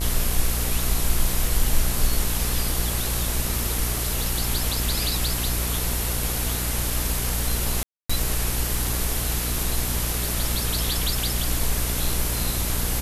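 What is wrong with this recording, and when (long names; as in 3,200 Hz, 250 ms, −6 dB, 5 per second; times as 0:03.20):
mains buzz 60 Hz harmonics 36 −28 dBFS
0:07.83–0:08.10: drop-out 265 ms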